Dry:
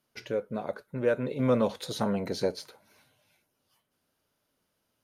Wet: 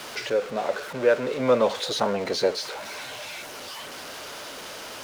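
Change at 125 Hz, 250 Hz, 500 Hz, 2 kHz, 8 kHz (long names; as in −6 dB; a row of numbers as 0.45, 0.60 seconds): −4.5, −1.0, +6.5, +10.5, +11.0 decibels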